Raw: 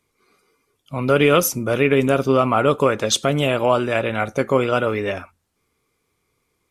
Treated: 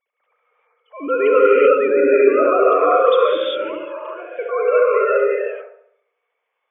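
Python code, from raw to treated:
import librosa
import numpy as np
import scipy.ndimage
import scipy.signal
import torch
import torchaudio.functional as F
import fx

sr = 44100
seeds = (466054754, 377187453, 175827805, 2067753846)

p1 = fx.sine_speech(x, sr)
p2 = fx.comb_fb(p1, sr, f0_hz=720.0, decay_s=0.38, harmonics='all', damping=0.0, mix_pct=80, at=(3.37, 4.39))
p3 = p2 + fx.echo_wet_lowpass(p2, sr, ms=69, feedback_pct=49, hz=1200.0, wet_db=-5, dry=0)
p4 = fx.rev_gated(p3, sr, seeds[0], gate_ms=420, shape='rising', drr_db=-5.0)
y = F.gain(torch.from_numpy(p4), -4.0).numpy()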